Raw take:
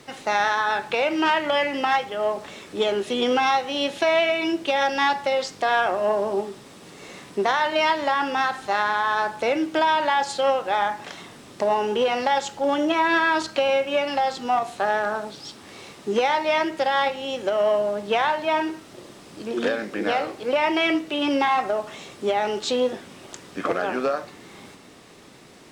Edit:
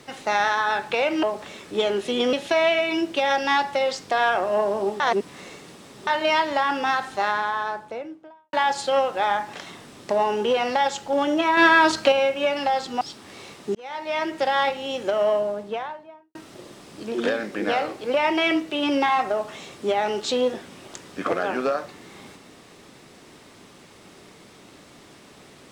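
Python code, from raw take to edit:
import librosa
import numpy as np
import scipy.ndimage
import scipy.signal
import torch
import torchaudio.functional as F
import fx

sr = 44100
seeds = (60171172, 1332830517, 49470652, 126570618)

y = fx.studio_fade_out(x, sr, start_s=8.6, length_s=1.44)
y = fx.studio_fade_out(y, sr, start_s=17.52, length_s=1.22)
y = fx.edit(y, sr, fx.cut(start_s=1.23, length_s=1.02),
    fx.cut(start_s=3.35, length_s=0.49),
    fx.reverse_span(start_s=6.51, length_s=1.07),
    fx.clip_gain(start_s=13.08, length_s=0.55, db=5.0),
    fx.cut(start_s=14.52, length_s=0.88),
    fx.fade_in_span(start_s=16.14, length_s=0.68), tone=tone)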